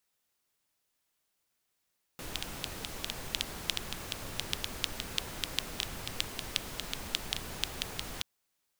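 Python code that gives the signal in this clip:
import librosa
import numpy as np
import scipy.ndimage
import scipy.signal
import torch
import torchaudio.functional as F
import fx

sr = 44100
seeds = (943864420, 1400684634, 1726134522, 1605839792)

y = fx.rain(sr, seeds[0], length_s=6.03, drops_per_s=5.8, hz=3300.0, bed_db=-0.5)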